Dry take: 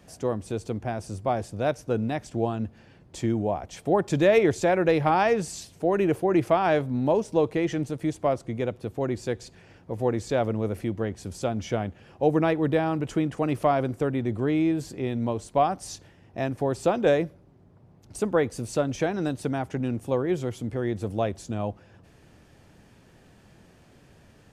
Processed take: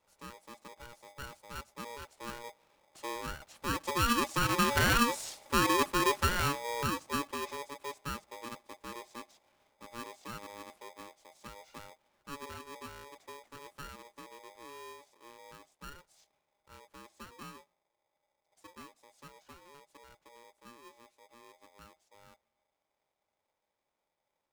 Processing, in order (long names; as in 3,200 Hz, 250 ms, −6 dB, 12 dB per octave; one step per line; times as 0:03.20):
source passing by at 0:05.33, 21 m/s, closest 15 metres
ring modulator with a square carrier 710 Hz
level −3.5 dB